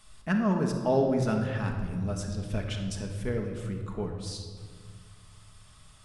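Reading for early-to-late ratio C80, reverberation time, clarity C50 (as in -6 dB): 7.0 dB, 1.8 s, 5.0 dB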